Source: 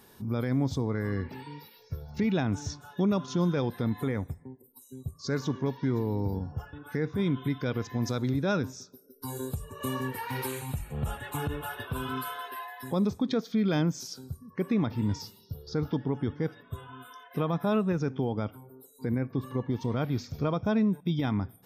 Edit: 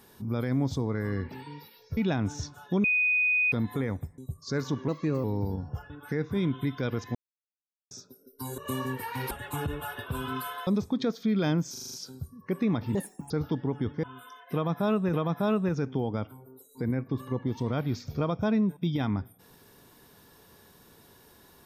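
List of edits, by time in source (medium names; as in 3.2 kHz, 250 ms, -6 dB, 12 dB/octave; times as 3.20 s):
1.97–2.24 s: delete
3.11–3.79 s: bleep 2.49 kHz -21.5 dBFS
4.45–4.95 s: delete
5.65–6.07 s: speed 117%
7.98–8.74 s: mute
9.41–9.73 s: delete
10.46–11.12 s: delete
12.48–12.96 s: delete
14.01 s: stutter 0.04 s, 6 plays
15.04–15.72 s: speed 192%
16.45–16.87 s: delete
17.37–17.97 s: loop, 2 plays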